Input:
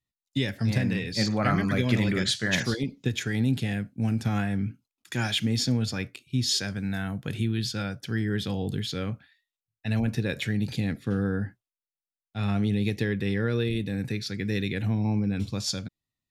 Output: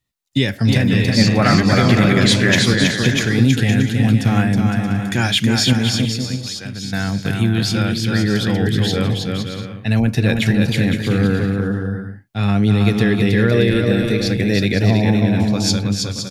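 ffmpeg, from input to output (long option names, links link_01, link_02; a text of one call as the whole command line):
ffmpeg -i in.wav -filter_complex "[0:a]asettb=1/sr,asplit=3[link_01][link_02][link_03];[link_01]atrim=end=5.734[link_04];[link_02]atrim=start=5.73:end=6.93,asetpts=PTS-STARTPTS,afade=type=in:duration=0.004:curve=qsin,afade=type=out:start_time=1.196:duration=0.004:curve=qsin,acompressor=threshold=-42dB:ratio=2.5[link_05];[link_03]atrim=start=6.926[link_06];[link_04][link_05]acrossfade=duration=0.004:curve1=hsin:curve2=qsin[link_07];[link_07][link_06]acrossfade=duration=0.004:curve1=qsin:curve2=hsin,asettb=1/sr,asplit=3[link_08][link_09][link_10];[link_08]atrim=end=13.514[link_11];[link_09]atrim=start=13.51:end=15.04,asetpts=PTS-STARTPTS,afade=type=in:duration=0.004:curve=qsin,afade=type=out:start_time=1.526:duration=0.004:curve=qsin,equalizer=frequency=630:width_type=o:width=0.34:gain=15[link_12];[link_10]atrim=start=15.036[link_13];[link_11][link_12]acrossfade=duration=0.004:curve1=hsin:curve2=qsin[link_14];[link_14][link_13]acrossfade=duration=0.004:curve1=qsin:curve2=hsin,aecho=1:1:320|512|627.2|696.3|737.8:0.631|0.398|0.251|0.158|0.1,alimiter=level_in=11dB:limit=-1dB:release=50:level=0:latency=1,volume=-1dB" out.wav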